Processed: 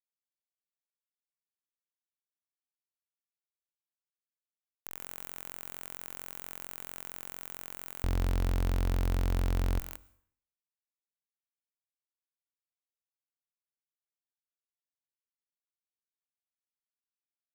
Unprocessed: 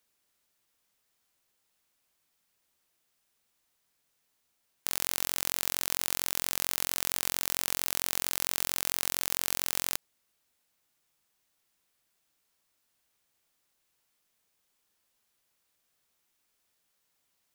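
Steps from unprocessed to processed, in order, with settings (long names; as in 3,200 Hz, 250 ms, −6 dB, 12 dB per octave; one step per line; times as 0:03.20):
0:08.03–0:09.79: RIAA equalisation playback
fuzz pedal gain 42 dB, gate −51 dBFS
dense smooth reverb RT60 0.61 s, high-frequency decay 0.9×, pre-delay 90 ms, DRR 20 dB
level −8.5 dB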